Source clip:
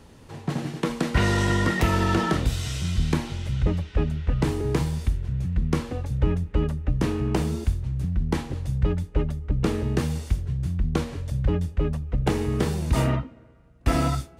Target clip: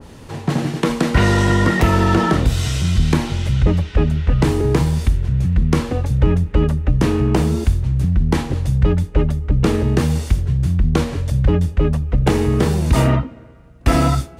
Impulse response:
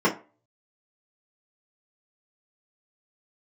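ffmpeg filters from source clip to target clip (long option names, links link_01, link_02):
-filter_complex "[0:a]asplit=2[link_01][link_02];[link_02]alimiter=limit=-20.5dB:level=0:latency=1,volume=-2dB[link_03];[link_01][link_03]amix=inputs=2:normalize=0,adynamicequalizer=threshold=0.0178:dfrequency=1700:dqfactor=0.7:tfrequency=1700:tqfactor=0.7:attack=5:release=100:ratio=0.375:range=2:mode=cutabove:tftype=highshelf,volume=5dB"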